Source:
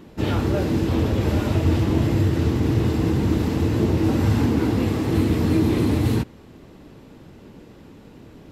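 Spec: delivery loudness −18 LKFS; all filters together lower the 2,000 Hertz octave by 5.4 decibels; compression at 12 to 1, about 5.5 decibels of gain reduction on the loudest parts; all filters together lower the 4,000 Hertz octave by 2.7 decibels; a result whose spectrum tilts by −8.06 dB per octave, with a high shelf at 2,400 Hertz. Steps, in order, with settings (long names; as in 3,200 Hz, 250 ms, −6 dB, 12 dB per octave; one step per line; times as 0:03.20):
parametric band 2,000 Hz −8.5 dB
high-shelf EQ 2,400 Hz +5.5 dB
parametric band 4,000 Hz −5.5 dB
downward compressor 12 to 1, threshold −20 dBFS
level +7.5 dB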